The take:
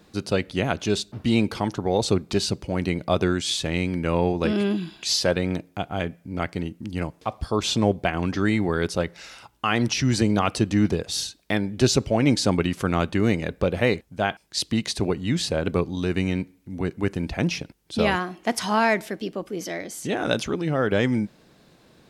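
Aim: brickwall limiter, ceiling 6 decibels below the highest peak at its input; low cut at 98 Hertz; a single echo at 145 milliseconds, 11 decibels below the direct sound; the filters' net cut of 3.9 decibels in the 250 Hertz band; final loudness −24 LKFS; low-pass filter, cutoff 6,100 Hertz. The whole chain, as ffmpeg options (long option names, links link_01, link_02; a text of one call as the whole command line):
ffmpeg -i in.wav -af "highpass=98,lowpass=6100,equalizer=frequency=250:width_type=o:gain=-5,alimiter=limit=-13dB:level=0:latency=1,aecho=1:1:145:0.282,volume=3.5dB" out.wav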